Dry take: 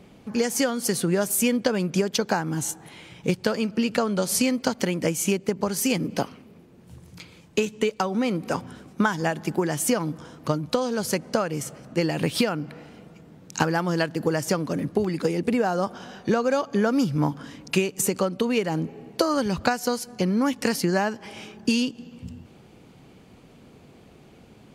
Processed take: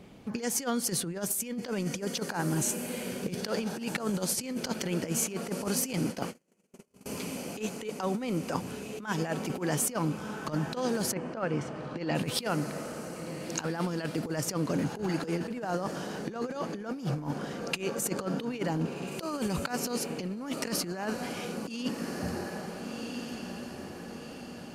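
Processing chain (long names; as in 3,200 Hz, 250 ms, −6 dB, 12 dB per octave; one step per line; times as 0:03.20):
feedback delay with all-pass diffusion 1,459 ms, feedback 51%, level −12 dB
0:05.93–0:07.06: noise gate −30 dBFS, range −42 dB
0:11.11–0:12.14: low-pass filter 2,100 Hz → 4,300 Hz 12 dB per octave
compressor whose output falls as the input rises −26 dBFS, ratio −0.5
level −4.5 dB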